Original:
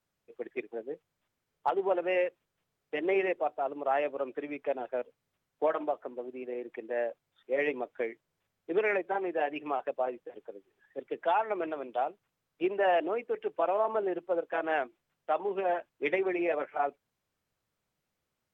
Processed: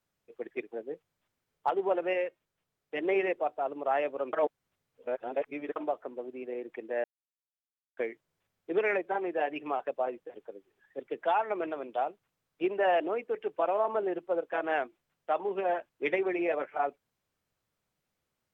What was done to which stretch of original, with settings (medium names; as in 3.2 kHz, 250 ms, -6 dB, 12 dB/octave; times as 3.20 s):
2.13–2.96 s: feedback comb 310 Hz, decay 0.22 s, mix 30%
4.33–5.76 s: reverse
7.04–7.97 s: mute